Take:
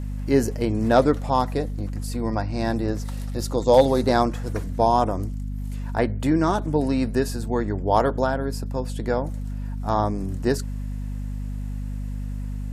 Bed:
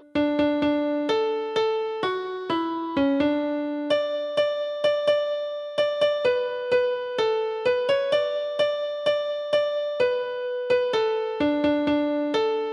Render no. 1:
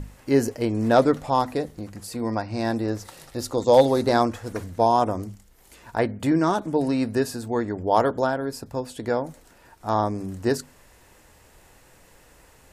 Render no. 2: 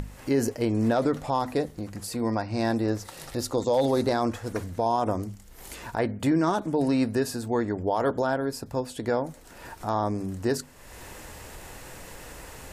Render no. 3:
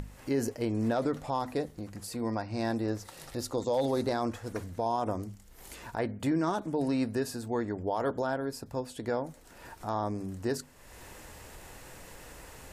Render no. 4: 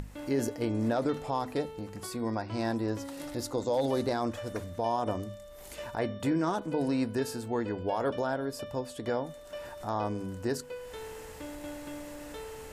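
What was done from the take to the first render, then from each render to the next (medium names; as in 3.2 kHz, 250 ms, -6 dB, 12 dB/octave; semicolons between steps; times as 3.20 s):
hum notches 50/100/150/200/250 Hz
peak limiter -15 dBFS, peak gain reduction 9.5 dB; upward compressor, threshold -31 dBFS
trim -5.5 dB
add bed -20 dB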